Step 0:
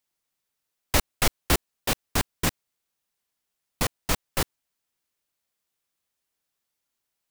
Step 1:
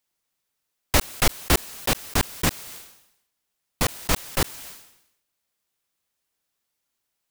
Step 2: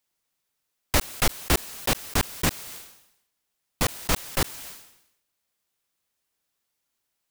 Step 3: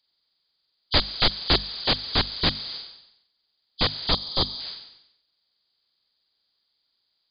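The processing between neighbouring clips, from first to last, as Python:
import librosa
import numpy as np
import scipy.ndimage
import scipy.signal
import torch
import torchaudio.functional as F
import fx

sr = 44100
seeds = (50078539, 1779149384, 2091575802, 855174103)

y1 = fx.sustainer(x, sr, db_per_s=73.0)
y1 = y1 * 10.0 ** (2.5 / 20.0)
y2 = 10.0 ** (-12.5 / 20.0) * np.tanh(y1 / 10.0 ** (-12.5 / 20.0))
y3 = fx.freq_compress(y2, sr, knee_hz=3000.0, ratio=4.0)
y3 = fx.hum_notches(y3, sr, base_hz=50, count=5)
y3 = fx.spec_box(y3, sr, start_s=4.12, length_s=0.48, low_hz=1300.0, high_hz=3100.0, gain_db=-11)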